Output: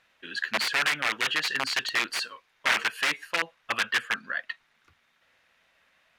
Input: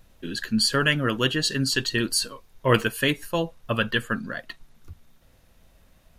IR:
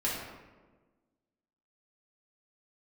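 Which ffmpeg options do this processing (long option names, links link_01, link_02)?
-af "aeval=exprs='(mod(6.68*val(0)+1,2)-1)/6.68':channel_layout=same,bandpass=frequency=2000:width_type=q:width=1.4:csg=0,volume=5dB"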